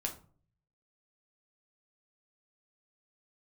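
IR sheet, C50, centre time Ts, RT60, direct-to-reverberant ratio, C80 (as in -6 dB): 11.5 dB, 13 ms, 0.45 s, 1.0 dB, 17.0 dB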